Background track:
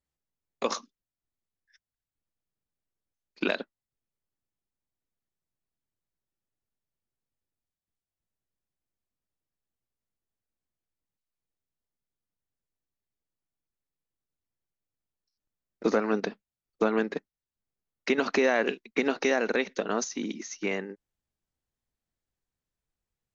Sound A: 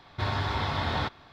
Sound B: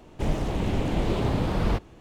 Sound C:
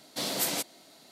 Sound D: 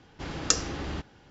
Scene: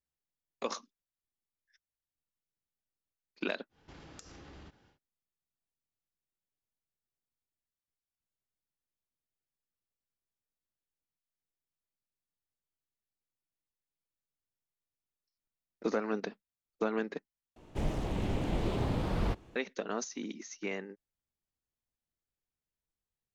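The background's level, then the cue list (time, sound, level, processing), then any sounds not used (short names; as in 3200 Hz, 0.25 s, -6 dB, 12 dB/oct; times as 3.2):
background track -7 dB
3.69 add D -10.5 dB, fades 0.10 s + compressor 12:1, threshold -37 dBFS
17.56 replace with B -7 dB
not used: A, C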